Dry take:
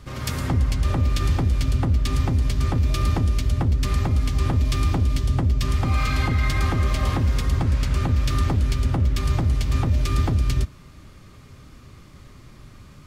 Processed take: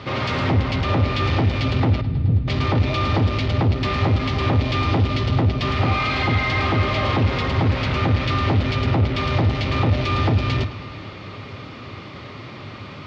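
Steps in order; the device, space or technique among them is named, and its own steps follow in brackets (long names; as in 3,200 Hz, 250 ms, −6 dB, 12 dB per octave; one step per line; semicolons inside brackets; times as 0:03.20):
0:02.01–0:02.48: inverse Chebyshev low-pass filter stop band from 540 Hz, stop band 50 dB
overdrive pedal into a guitar cabinet (mid-hump overdrive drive 27 dB, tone 2,300 Hz, clips at −11.5 dBFS; loudspeaker in its box 85–4,500 Hz, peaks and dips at 100 Hz +10 dB, 1,100 Hz −4 dB, 1,600 Hz −7 dB)
bucket-brigade delay 107 ms, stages 4,096, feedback 78%, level −18.5 dB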